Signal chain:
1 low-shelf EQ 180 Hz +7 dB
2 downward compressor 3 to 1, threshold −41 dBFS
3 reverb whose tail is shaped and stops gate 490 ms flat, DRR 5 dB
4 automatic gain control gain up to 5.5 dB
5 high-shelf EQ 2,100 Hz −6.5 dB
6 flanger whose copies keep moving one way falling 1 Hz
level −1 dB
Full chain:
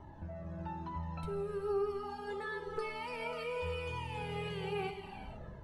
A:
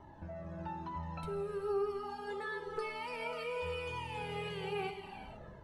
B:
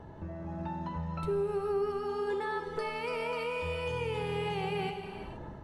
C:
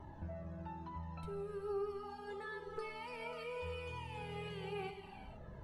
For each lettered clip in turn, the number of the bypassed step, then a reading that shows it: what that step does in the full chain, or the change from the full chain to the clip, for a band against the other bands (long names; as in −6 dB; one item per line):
1, 125 Hz band −3.5 dB
6, change in crest factor −2.5 dB
4, change in momentary loudness spread −4 LU